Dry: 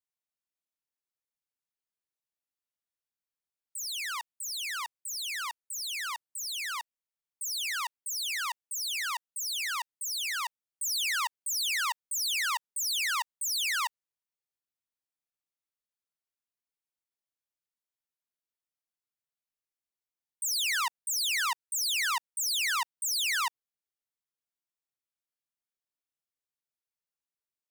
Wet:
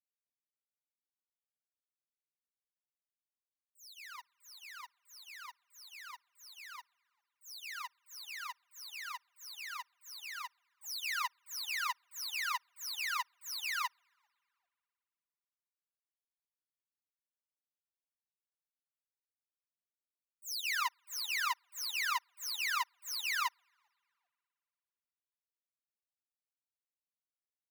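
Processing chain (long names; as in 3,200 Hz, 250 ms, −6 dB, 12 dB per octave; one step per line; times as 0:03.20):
parametric band 8,500 Hz −11 dB 0.42 octaves
notch filter 3,300 Hz, Q 6.9
comb filter 5 ms, depth 68%
echo with shifted repeats 395 ms, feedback 32%, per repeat −130 Hz, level −23.5 dB
spring reverb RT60 2.7 s, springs 54 ms, chirp 45 ms, DRR 18 dB
expander for the loud parts 2.5 to 1, over −42 dBFS
level −4 dB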